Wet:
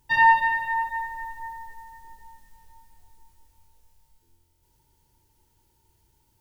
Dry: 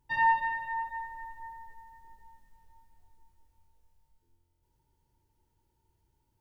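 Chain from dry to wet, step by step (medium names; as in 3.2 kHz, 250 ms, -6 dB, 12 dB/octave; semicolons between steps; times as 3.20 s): treble shelf 2.4 kHz +8.5 dB; trim +6.5 dB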